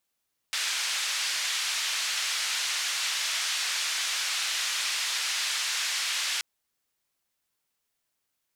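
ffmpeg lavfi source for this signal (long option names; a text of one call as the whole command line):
ffmpeg -f lavfi -i "anoisesrc=color=white:duration=5.88:sample_rate=44100:seed=1,highpass=frequency=1600,lowpass=frequency=5600,volume=-17.5dB" out.wav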